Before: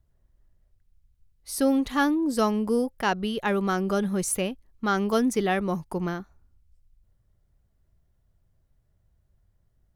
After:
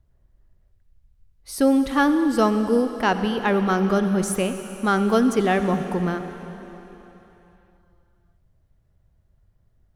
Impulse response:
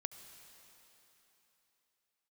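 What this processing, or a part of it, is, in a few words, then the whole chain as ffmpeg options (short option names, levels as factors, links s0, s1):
swimming-pool hall: -filter_complex "[1:a]atrim=start_sample=2205[s0];[0:a][s0]afir=irnorm=-1:irlink=0,highshelf=f=4400:g=-7,volume=2.37"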